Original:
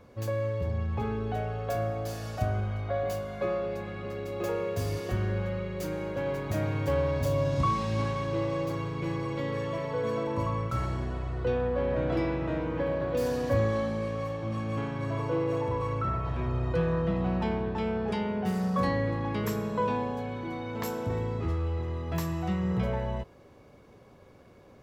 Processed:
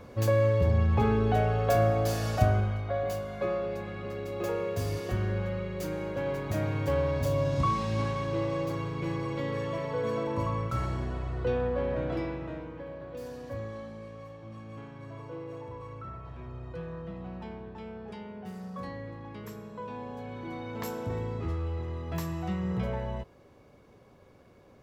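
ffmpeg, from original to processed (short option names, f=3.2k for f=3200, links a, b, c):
-af "volume=16dB,afade=t=out:st=2.35:d=0.48:silence=0.446684,afade=t=out:st=11.65:d=1.15:silence=0.266073,afade=t=in:st=19.87:d=0.68:silence=0.334965"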